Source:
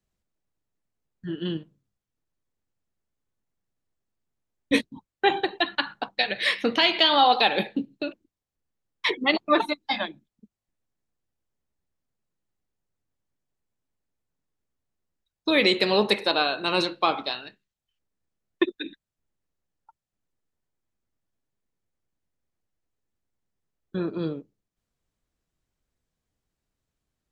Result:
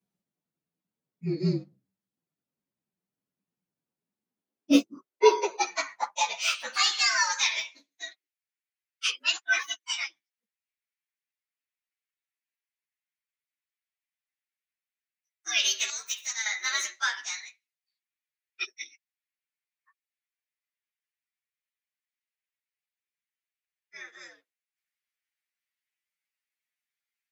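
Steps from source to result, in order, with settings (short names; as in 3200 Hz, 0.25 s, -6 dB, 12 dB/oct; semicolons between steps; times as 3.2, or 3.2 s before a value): inharmonic rescaling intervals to 116%; high-pass sweep 180 Hz -> 2000 Hz, 4.07–7.26; 15.9–16.46 pre-emphasis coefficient 0.8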